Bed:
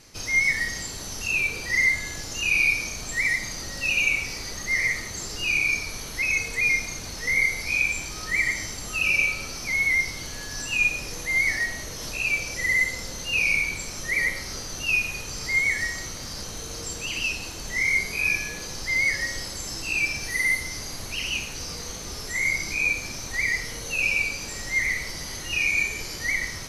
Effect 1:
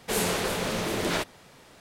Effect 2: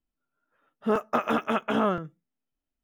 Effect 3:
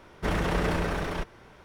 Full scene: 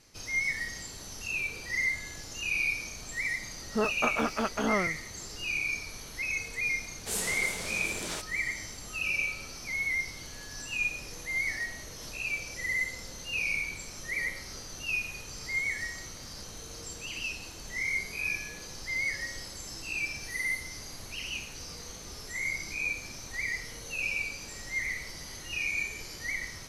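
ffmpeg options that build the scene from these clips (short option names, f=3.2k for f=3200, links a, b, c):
-filter_complex "[0:a]volume=-8.5dB[a];[1:a]equalizer=f=7.9k:w=0.65:g=13[b];[2:a]atrim=end=2.83,asetpts=PTS-STARTPTS,volume=-4dB,afade=t=in:d=0.004:c=hsin,afade=t=out:st=2.826:d=0.004:c=hsin,adelay=2890[c];[b]atrim=end=1.8,asetpts=PTS-STARTPTS,volume=-12.5dB,afade=t=in:d=0.004:c=hsin,afade=t=out:st=1.796:d=0.004:c=hsin,adelay=307818S[d];[a][c][d]amix=inputs=3:normalize=0"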